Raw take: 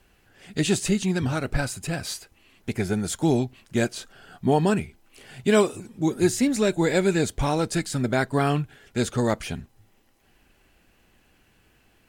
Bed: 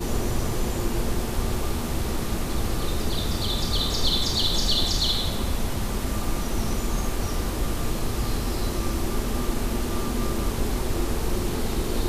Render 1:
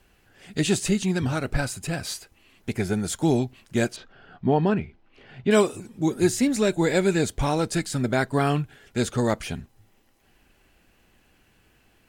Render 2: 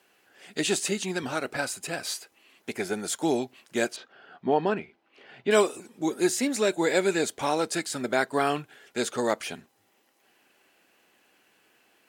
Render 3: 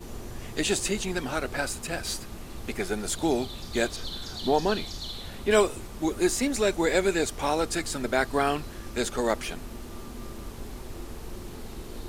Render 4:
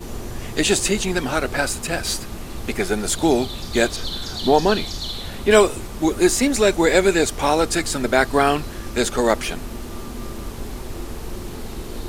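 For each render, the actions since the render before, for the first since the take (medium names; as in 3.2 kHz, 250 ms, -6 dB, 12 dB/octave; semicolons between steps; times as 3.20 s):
3.96–5.51 s: distance through air 260 m
high-pass 350 Hz 12 dB/octave
add bed -13.5 dB
trim +8 dB; peak limiter -1 dBFS, peak gain reduction 1.5 dB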